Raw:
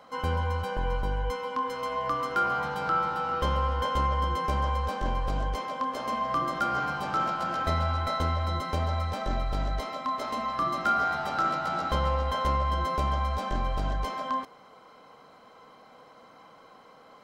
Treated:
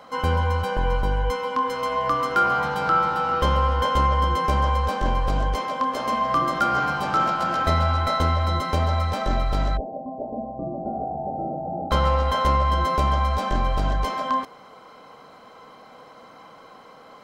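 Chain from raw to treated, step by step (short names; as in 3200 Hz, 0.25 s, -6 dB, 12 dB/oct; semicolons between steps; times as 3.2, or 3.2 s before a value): 9.77–11.91 Chebyshev low-pass 790 Hz, order 6; gain +6.5 dB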